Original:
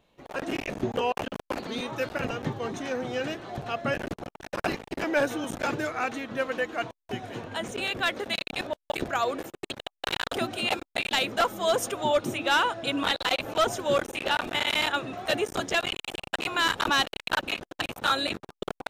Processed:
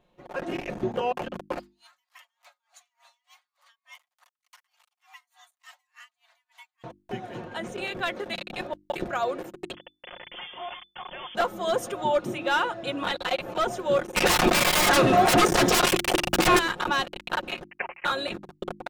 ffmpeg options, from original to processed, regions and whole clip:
-filter_complex "[0:a]asettb=1/sr,asplit=3[s0][s1][s2];[s0]atrim=end=1.594[s3];[s1]atrim=start=1.59:end=6.84,asetpts=PTS-STARTPTS,afade=t=in:d=0.004:c=qsin,afade=t=out:st=5.246:d=0.004:c=qsin,aderivative,afreqshift=440,aeval=exprs='val(0)*pow(10,-35*(0.5-0.5*cos(2*PI*3.4*n/s))/20)':c=same[s4];[s2]atrim=start=6.836[s5];[s3][s4]acrossfade=d=0.004:c1=hsin:c2=qsin[s6];[s6][s5]acrossfade=d=0.004:c1=qsin:c2=hsin,asettb=1/sr,asplit=3[s7][s8][s9];[s7]atrim=end=9.744[s10];[s8]atrim=start=9.74:end=11.35,asetpts=PTS-STARTPTS,afade=t=in:d=0.004:c=qsin,afade=t=out:st=1.606:d=0.004:c=qsin,aemphasis=mode=production:type=75kf,aeval=exprs='(tanh(39.8*val(0)+0.55)-tanh(0.55))/39.8':c=same,lowpass=f=3000:t=q:w=0.5098,lowpass=f=3000:t=q:w=0.6013,lowpass=f=3000:t=q:w=0.9,lowpass=f=3000:t=q:w=2.563,afreqshift=-3500[s11];[s9]atrim=start=11.346[s12];[s10][s11]acrossfade=d=0.004:c1=hsin:c2=qsin[s13];[s13][s12]acrossfade=d=0.004:c1=qsin:c2=hsin,asettb=1/sr,asplit=3[s14][s15][s16];[s14]atrim=end=14.164[s17];[s15]atrim=start=14.16:end=16.59,asetpts=PTS-STARTPTS,afade=t=in:d=0.004:c=qsin,afade=t=out:st=2.426:d=0.004:c=qsin,acrossover=split=7000[s18][s19];[s19]acompressor=threshold=0.002:ratio=4:attack=1:release=60[s20];[s18][s20]amix=inputs=2:normalize=0,highshelf=f=6700:g=9.5,aeval=exprs='0.211*sin(PI/2*6.31*val(0)/0.211)':c=same[s21];[s16]atrim=start=16.586[s22];[s17][s21]acrossfade=d=0.004:c1=hsin:c2=qsin[s23];[s23][s22]acrossfade=d=0.004:c1=qsin:c2=hsin,asettb=1/sr,asplit=3[s24][s25][s26];[s24]atrim=end=17.644[s27];[s25]atrim=start=17.64:end=18.05,asetpts=PTS-STARTPTS,afade=t=in:d=0.004:c=qsin,afade=t=out:st=0.406:d=0.004:c=qsin,highpass=f=1100:t=q:w=1.8,lowpass=f=2900:t=q:w=0.5098,lowpass=f=2900:t=q:w=0.6013,lowpass=f=2900:t=q:w=0.9,lowpass=f=2900:t=q:w=2.563,afreqshift=-3400[s28];[s26]atrim=start=18.046[s29];[s27][s28]acrossfade=d=0.004:c1=hsin:c2=qsin[s30];[s30][s29]acrossfade=d=0.004:c1=qsin:c2=hsin,highshelf=f=2300:g=-8,bandreject=f=50:t=h:w=6,bandreject=f=100:t=h:w=6,bandreject=f=150:t=h:w=6,bandreject=f=200:t=h:w=6,bandreject=f=250:t=h:w=6,bandreject=f=300:t=h:w=6,bandreject=f=350:t=h:w=6,aecho=1:1:5.6:0.45"

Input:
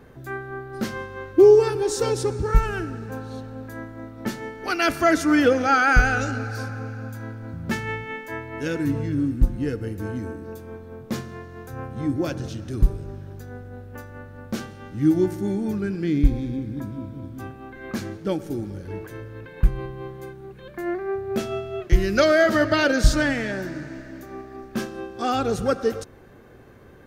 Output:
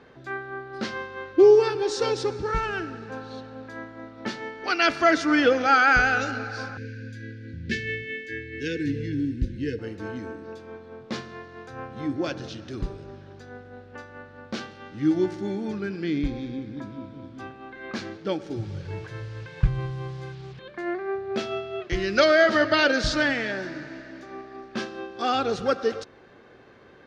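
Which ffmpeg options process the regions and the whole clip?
-filter_complex "[0:a]asettb=1/sr,asplit=3[s0][s1][s2];[s0]atrim=end=6.774[s3];[s1]atrim=start=6.77:end=9.79,asetpts=PTS-STARTPTS,afade=t=in:d=0.004:c=qsin,afade=t=out:st=3.016:d=0.004:c=qsin,asuperstop=centerf=880:order=20:qfactor=0.85,equalizer=f=76:w=1.7:g=13[s4];[s2]atrim=start=9.786[s5];[s3][s4]acrossfade=d=0.004:c1=hsin:c2=qsin[s6];[s6][s5]acrossfade=d=0.004:c1=qsin:c2=hsin,asettb=1/sr,asplit=3[s7][s8][s9];[s7]atrim=end=18.564[s10];[s8]atrim=start=18.56:end=20.59,asetpts=PTS-STARTPTS,afade=t=in:d=0.004:c=qsin,afade=t=out:st=2.026:d=0.004:c=qsin,lowshelf=f=180:t=q:w=3:g=8.5,acrusher=bits=7:mix=0:aa=0.5[s11];[s9]atrim=start=20.586[s12];[s10][s11]acrossfade=d=0.004:c1=hsin:c2=qsin[s13];[s13][s12]acrossfade=d=0.004:c1=qsin:c2=hsin,lowpass=f=4600:w=0.5412,lowpass=f=4600:w=1.3066,aemphasis=mode=production:type=bsi"

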